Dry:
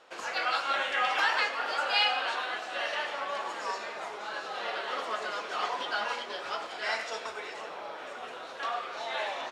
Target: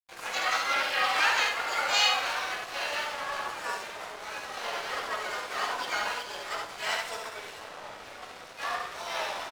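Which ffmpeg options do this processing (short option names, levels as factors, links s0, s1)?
-filter_complex "[0:a]aeval=exprs='sgn(val(0))*max(abs(val(0))-0.00668,0)':c=same,aecho=1:1:59|69:0.168|0.596,asplit=2[s0][s1];[s1]asetrate=66075,aresample=44100,atempo=0.66742,volume=0.708[s2];[s0][s2]amix=inputs=2:normalize=0"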